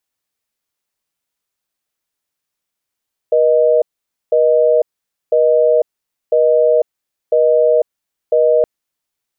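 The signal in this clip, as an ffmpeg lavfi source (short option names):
-f lavfi -i "aevalsrc='0.266*(sin(2*PI*480*t)+sin(2*PI*620*t))*clip(min(mod(t,1),0.5-mod(t,1))/0.005,0,1)':d=5.32:s=44100"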